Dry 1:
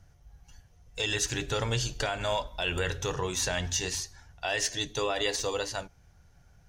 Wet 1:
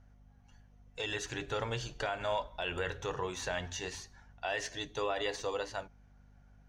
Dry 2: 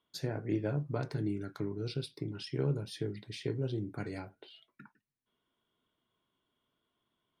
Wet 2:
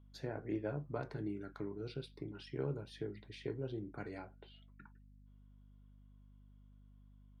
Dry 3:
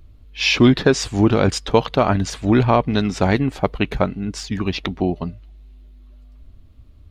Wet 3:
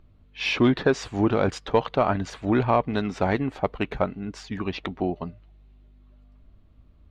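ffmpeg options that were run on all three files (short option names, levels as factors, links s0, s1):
-filter_complex "[0:a]asplit=2[s0][s1];[s1]highpass=f=720:p=1,volume=2.82,asoftclip=type=tanh:threshold=0.891[s2];[s0][s2]amix=inputs=2:normalize=0,lowpass=f=1200:p=1,volume=0.501,aeval=exprs='val(0)+0.00178*(sin(2*PI*50*n/s)+sin(2*PI*2*50*n/s)/2+sin(2*PI*3*50*n/s)/3+sin(2*PI*4*50*n/s)/4+sin(2*PI*5*50*n/s)/5)':c=same,bandreject=f=5100:w=27,volume=0.596"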